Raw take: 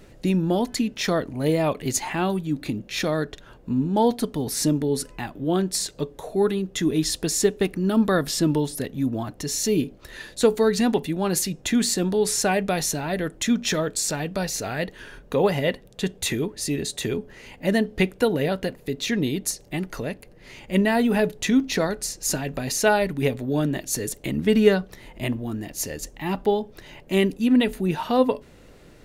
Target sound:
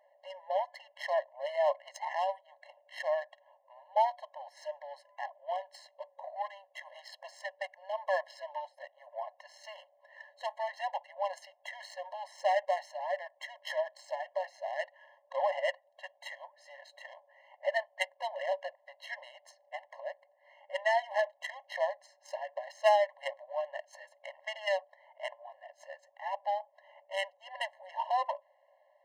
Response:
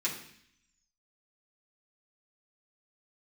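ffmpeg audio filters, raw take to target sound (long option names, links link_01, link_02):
-af "asubboost=boost=5:cutoff=120,adynamicsmooth=sensitivity=1:basefreq=970,afftfilt=real='re*eq(mod(floor(b*sr/1024/550),2),1)':imag='im*eq(mod(floor(b*sr/1024/550),2),1)':win_size=1024:overlap=0.75,volume=-1.5dB"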